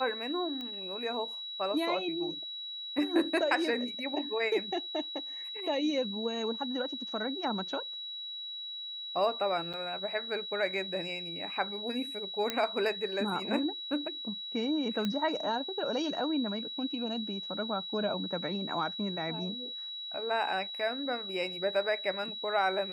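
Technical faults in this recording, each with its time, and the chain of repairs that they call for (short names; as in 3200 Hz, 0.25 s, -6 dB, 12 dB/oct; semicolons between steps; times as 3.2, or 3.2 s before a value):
tone 3900 Hz -38 dBFS
0.61 pop -27 dBFS
9.73–9.74 gap 6.7 ms
12.5 pop -15 dBFS
15.05 pop -19 dBFS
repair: de-click; notch 3900 Hz, Q 30; interpolate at 9.73, 6.7 ms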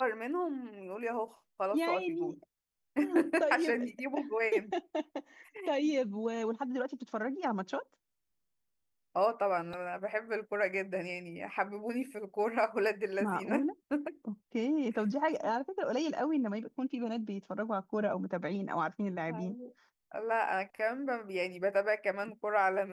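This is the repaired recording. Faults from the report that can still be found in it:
none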